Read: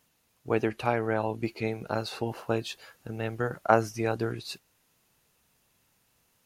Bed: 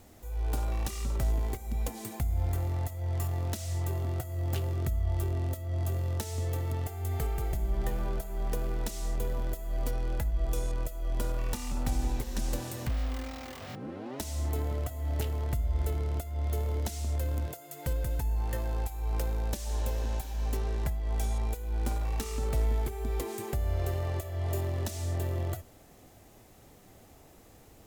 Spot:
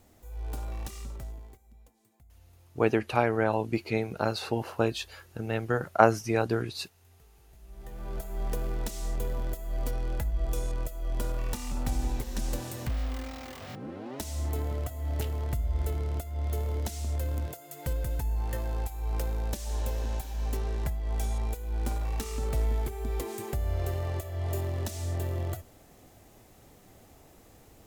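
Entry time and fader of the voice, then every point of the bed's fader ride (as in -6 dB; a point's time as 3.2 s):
2.30 s, +2.0 dB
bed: 0.97 s -5 dB
1.96 s -28 dB
7.43 s -28 dB
8.24 s 0 dB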